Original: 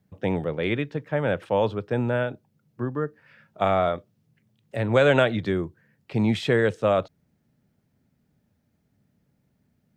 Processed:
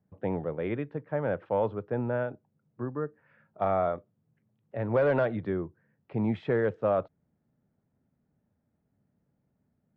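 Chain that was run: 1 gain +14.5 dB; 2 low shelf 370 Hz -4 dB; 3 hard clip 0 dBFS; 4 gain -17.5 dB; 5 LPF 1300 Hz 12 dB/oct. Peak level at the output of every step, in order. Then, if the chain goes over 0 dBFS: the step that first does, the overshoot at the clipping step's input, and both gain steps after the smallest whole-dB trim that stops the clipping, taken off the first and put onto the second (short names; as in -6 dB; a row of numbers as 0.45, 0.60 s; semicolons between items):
+10.0, +9.0, 0.0, -17.5, -17.0 dBFS; step 1, 9.0 dB; step 1 +5.5 dB, step 4 -8.5 dB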